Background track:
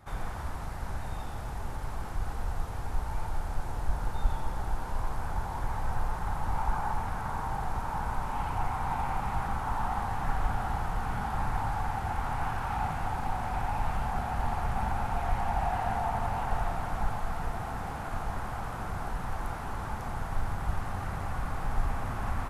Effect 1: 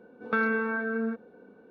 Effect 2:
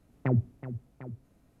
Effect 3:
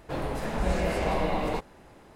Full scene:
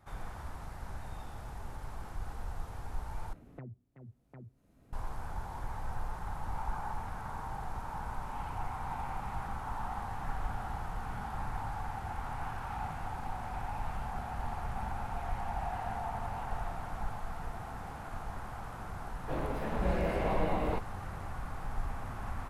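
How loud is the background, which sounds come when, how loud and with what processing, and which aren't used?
background track -7 dB
3.33 s: replace with 2 -17 dB + three bands compressed up and down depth 100%
19.19 s: add 3 -4 dB + peaking EQ 7.2 kHz -14 dB 1.7 oct
not used: 1

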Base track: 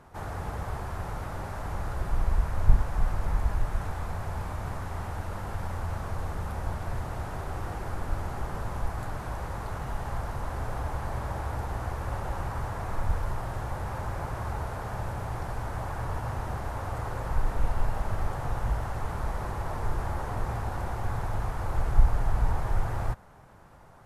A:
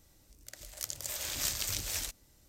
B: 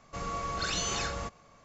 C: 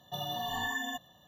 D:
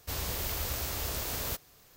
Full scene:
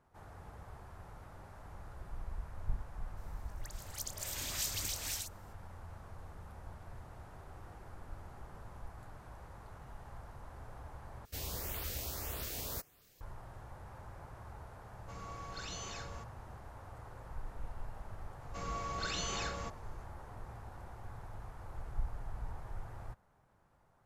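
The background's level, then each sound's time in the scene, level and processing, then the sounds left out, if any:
base track -17 dB
3.05 s: add A -3.5 dB + phase dispersion highs, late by 127 ms, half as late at 1.5 kHz
11.25 s: replace with D -6 dB + LFO notch saw up 1.7 Hz 710–7400 Hz
14.95 s: add B -13 dB
18.41 s: add B -5.5 dB + dynamic bell 5.9 kHz, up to -3 dB, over -44 dBFS
not used: C

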